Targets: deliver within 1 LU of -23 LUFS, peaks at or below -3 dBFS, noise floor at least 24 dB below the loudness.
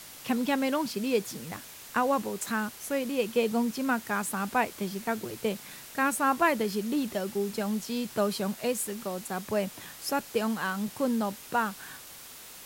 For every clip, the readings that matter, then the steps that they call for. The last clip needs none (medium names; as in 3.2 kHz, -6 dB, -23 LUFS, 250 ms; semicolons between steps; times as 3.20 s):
noise floor -47 dBFS; noise floor target -54 dBFS; loudness -30.0 LUFS; peak level -12.5 dBFS; loudness target -23.0 LUFS
-> noise print and reduce 7 dB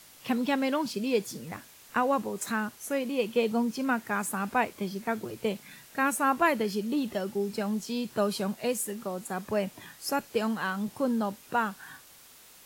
noise floor -54 dBFS; loudness -30.0 LUFS; peak level -12.5 dBFS; loudness target -23.0 LUFS
-> trim +7 dB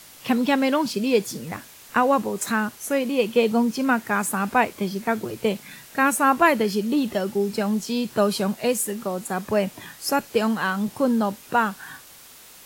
loudness -23.0 LUFS; peak level -5.5 dBFS; noise floor -47 dBFS